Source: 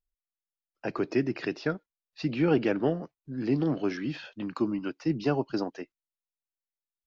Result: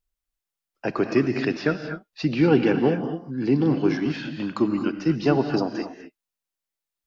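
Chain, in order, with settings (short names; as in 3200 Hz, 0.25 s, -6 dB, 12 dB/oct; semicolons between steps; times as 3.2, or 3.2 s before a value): 2.41–4.06 notch comb 630 Hz; on a send: reverb, pre-delay 3 ms, DRR 6.5 dB; on the sum: gain +6 dB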